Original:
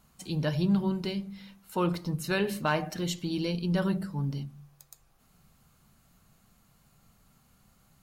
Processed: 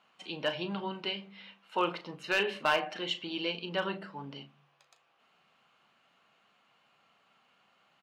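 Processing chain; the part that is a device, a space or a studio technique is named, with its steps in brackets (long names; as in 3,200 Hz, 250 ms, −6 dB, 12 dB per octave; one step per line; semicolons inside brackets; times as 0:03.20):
megaphone (band-pass filter 500–2,700 Hz; parametric band 2,900 Hz +9.5 dB 0.56 octaves; hard clipping −20.5 dBFS, distortion −17 dB; double-tracking delay 36 ms −11.5 dB)
level +2 dB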